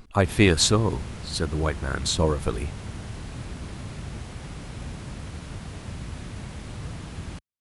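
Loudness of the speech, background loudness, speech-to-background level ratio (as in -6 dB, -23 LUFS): -23.5 LUFS, -37.5 LUFS, 14.0 dB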